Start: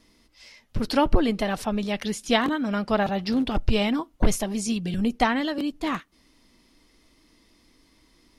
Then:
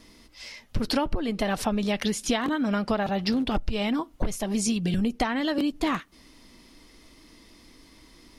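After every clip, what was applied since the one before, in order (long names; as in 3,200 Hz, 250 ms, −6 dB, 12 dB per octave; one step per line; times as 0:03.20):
downward compressor 12 to 1, threshold −29 dBFS, peak gain reduction 17.5 dB
level +7 dB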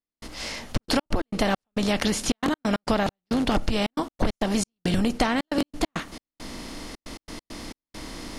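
compressor on every frequency bin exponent 0.6
gate pattern "..xxxxx.x.x.xx" 136 BPM −60 dB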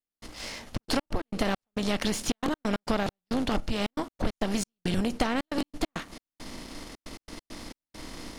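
gain on one half-wave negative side −7 dB
level −2 dB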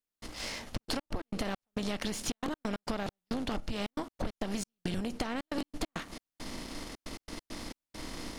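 downward compressor 4 to 1, threshold −31 dBFS, peak gain reduction 10.5 dB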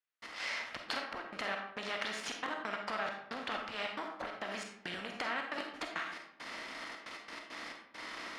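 resonant band-pass 1,700 Hz, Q 1.2
convolution reverb RT60 0.75 s, pre-delay 5 ms, DRR 2 dB
level +4.5 dB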